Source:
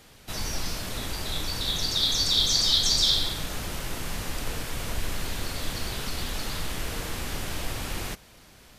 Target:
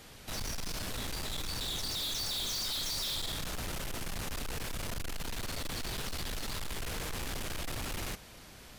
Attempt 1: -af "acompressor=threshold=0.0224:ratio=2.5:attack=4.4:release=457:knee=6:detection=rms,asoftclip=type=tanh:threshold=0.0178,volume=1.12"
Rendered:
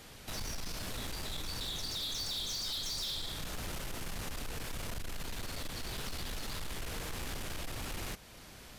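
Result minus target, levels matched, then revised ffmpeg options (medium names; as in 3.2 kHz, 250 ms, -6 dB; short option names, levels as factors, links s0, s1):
compression: peak gain reduction +12 dB
-af "asoftclip=type=tanh:threshold=0.0178,volume=1.12"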